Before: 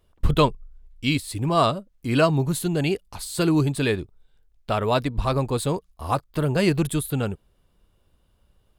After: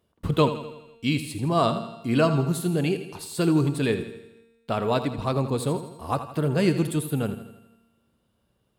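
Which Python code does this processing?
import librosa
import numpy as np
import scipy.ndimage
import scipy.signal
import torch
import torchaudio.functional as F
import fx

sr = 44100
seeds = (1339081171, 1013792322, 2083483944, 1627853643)

p1 = scipy.signal.sosfilt(scipy.signal.butter(2, 140.0, 'highpass', fs=sr, output='sos'), x)
p2 = fx.low_shelf(p1, sr, hz=400.0, db=6.5)
p3 = fx.comb_fb(p2, sr, f0_hz=230.0, decay_s=1.3, harmonics='all', damping=0.0, mix_pct=70)
p4 = p3 + fx.echo_feedback(p3, sr, ms=82, feedback_pct=53, wet_db=-12, dry=0)
y = F.gain(torch.from_numpy(p4), 5.5).numpy()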